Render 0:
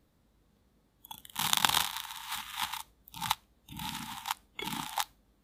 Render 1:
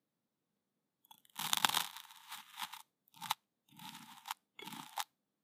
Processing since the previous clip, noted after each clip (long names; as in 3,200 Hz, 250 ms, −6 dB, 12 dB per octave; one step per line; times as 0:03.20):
high-pass filter 140 Hz 24 dB per octave
expander for the loud parts 1.5 to 1, over −46 dBFS
level −4.5 dB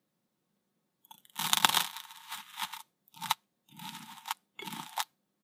comb filter 5.5 ms, depth 33%
level +6.5 dB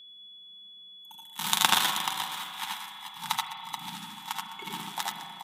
multi-tap delay 77/87/207/430/431/572 ms −3/−4/−14.5/−12/−11/−15.5 dB
steady tone 3,400 Hz −47 dBFS
spring reverb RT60 2.7 s, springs 35/39 ms, chirp 55 ms, DRR 6 dB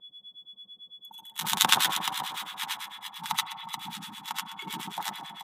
two-band tremolo in antiphase 9 Hz, depth 100%, crossover 1,100 Hz
level +5 dB